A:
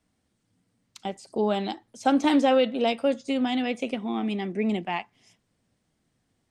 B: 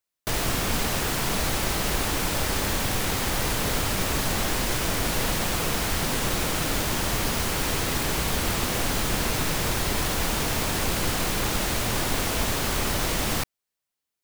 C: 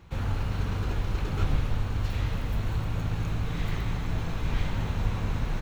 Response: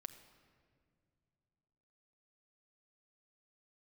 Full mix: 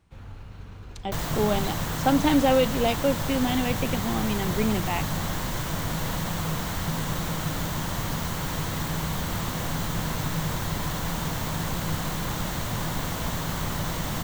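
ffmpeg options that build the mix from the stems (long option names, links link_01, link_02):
-filter_complex "[0:a]volume=0dB[link_01];[1:a]equalizer=frequency=100:width_type=o:width=0.33:gain=6,equalizer=frequency=160:width_type=o:width=0.33:gain=12,equalizer=frequency=400:width_type=o:width=0.33:gain=-5,equalizer=frequency=1000:width_type=o:width=0.33:gain=4,equalizer=frequency=2500:width_type=o:width=0.33:gain=-6,equalizer=frequency=5000:width_type=o:width=0.33:gain=-5,equalizer=frequency=10000:width_type=o:width=0.33:gain=-9,adelay=850,volume=-4.5dB[link_02];[2:a]volume=-13dB[link_03];[link_01][link_02][link_03]amix=inputs=3:normalize=0"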